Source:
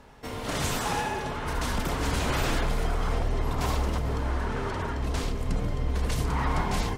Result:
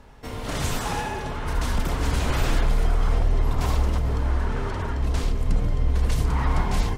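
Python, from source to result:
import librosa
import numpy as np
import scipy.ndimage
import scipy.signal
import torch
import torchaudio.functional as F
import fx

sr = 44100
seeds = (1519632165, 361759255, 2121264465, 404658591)

y = fx.low_shelf(x, sr, hz=90.0, db=9.0)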